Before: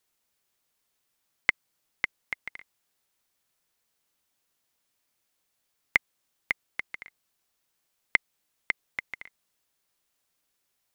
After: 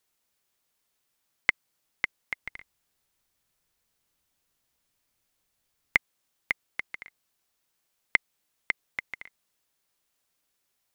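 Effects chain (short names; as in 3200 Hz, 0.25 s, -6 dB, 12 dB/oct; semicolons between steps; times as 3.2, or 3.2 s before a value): 2.42–5.96 low shelf 130 Hz +11.5 dB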